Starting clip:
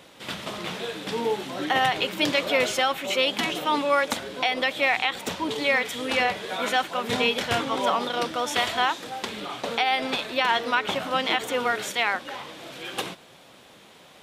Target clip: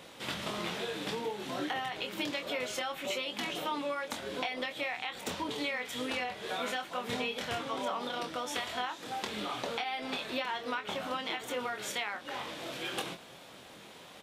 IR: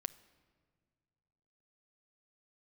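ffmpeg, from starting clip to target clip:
-filter_complex "[0:a]acompressor=threshold=-32dB:ratio=6,asplit=2[link_01][link_02];[link_02]adelay=24,volume=-6.5dB[link_03];[link_01][link_03]amix=inputs=2:normalize=0,volume=-1.5dB"

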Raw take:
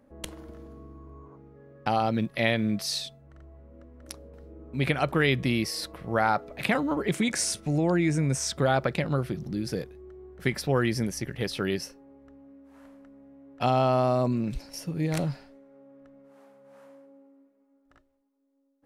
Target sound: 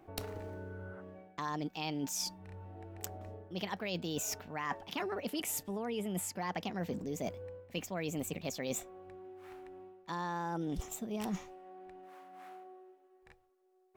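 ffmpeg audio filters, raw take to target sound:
ffmpeg -i in.wav -af "asetrate=59535,aresample=44100,areverse,acompressor=threshold=-35dB:ratio=12,areverse,volume=1dB" out.wav

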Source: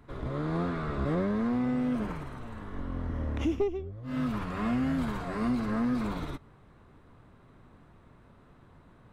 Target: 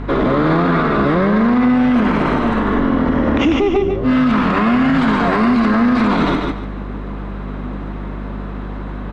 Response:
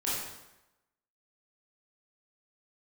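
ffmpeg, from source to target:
-filter_complex "[0:a]lowpass=3900,lowshelf=frequency=150:width_type=q:width=1.5:gain=-13.5,acrossover=split=170|750[link_01][link_02][link_03];[link_02]acompressor=threshold=-38dB:ratio=4[link_04];[link_01][link_04][link_03]amix=inputs=3:normalize=0,aeval=exprs='val(0)+0.00282*(sin(2*PI*50*n/s)+sin(2*PI*2*50*n/s)/2+sin(2*PI*3*50*n/s)/3+sin(2*PI*4*50*n/s)/4+sin(2*PI*5*50*n/s)/5)':channel_layout=same,asplit=2[link_05][link_06];[link_06]aecho=0:1:145|290|435:0.473|0.114|0.0273[link_07];[link_05][link_07]amix=inputs=2:normalize=0,alimiter=level_in=32dB:limit=-1dB:release=50:level=0:latency=1,volume=-6dB"

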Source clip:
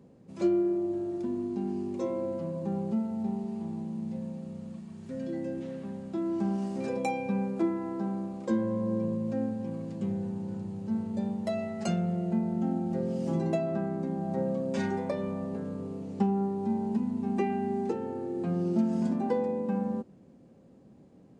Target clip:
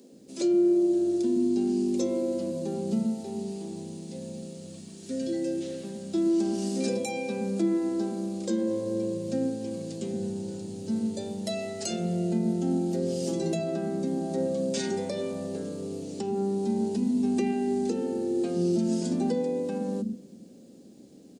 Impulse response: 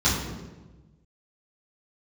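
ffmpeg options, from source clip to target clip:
-filter_complex "[0:a]bass=frequency=250:gain=-12,treble=frequency=4000:gain=13,alimiter=level_in=2.5dB:limit=-24dB:level=0:latency=1:release=89,volume=-2.5dB,equalizer=frequency=250:width_type=o:width=1:gain=11,equalizer=frequency=1000:width_type=o:width=1:gain=-12,equalizer=frequency=2000:width_type=o:width=1:gain=-3,equalizer=frequency=4000:width_type=o:width=1:gain=4,acrossover=split=230[link_01][link_02];[link_01]adelay=120[link_03];[link_03][link_02]amix=inputs=2:normalize=0,asplit=2[link_04][link_05];[1:a]atrim=start_sample=2205[link_06];[link_05][link_06]afir=irnorm=-1:irlink=0,volume=-38dB[link_07];[link_04][link_07]amix=inputs=2:normalize=0,volume=6dB"

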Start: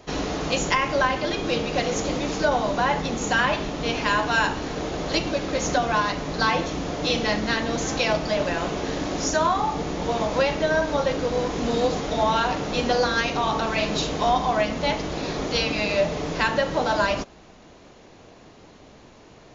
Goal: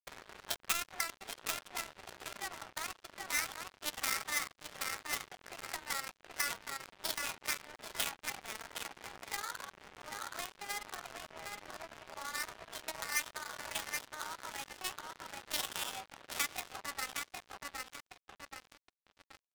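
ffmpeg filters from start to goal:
ffmpeg -i in.wav -filter_complex "[0:a]acrossover=split=3900[link_01][link_02];[link_02]acompressor=threshold=-42dB:ratio=4:attack=1:release=60[link_03];[link_01][link_03]amix=inputs=2:normalize=0,equalizer=frequency=1300:width=0.72:gain=12,afftfilt=real='re*gte(hypot(re,im),0.0891)':imag='im*gte(hypot(re,im),0.0891)':win_size=1024:overlap=0.75,highpass=frequency=270:width=0.5412,highpass=frequency=270:width=1.3066,asplit=2[link_04][link_05];[link_05]adelay=772,lowpass=frequency=2700:poles=1,volume=-3.5dB,asplit=2[link_06][link_07];[link_07]adelay=772,lowpass=frequency=2700:poles=1,volume=0.49,asplit=2[link_08][link_09];[link_09]adelay=772,lowpass=frequency=2700:poles=1,volume=0.49,asplit=2[link_10][link_11];[link_11]adelay=772,lowpass=frequency=2700:poles=1,volume=0.49,asplit=2[link_12][link_13];[link_13]adelay=772,lowpass=frequency=2700:poles=1,volume=0.49,asplit=2[link_14][link_15];[link_15]adelay=772,lowpass=frequency=2700:poles=1,volume=0.49[link_16];[link_06][link_08][link_10][link_12][link_14][link_16]amix=inputs=6:normalize=0[link_17];[link_04][link_17]amix=inputs=2:normalize=0,acompressor=threshold=-28dB:ratio=3,asoftclip=type=tanh:threshold=-27dB,asetrate=57191,aresample=44100,atempo=0.771105,highshelf=frequency=5200:gain=8,acrusher=bits=3:mix=0:aa=0.5,volume=8.5dB" out.wav

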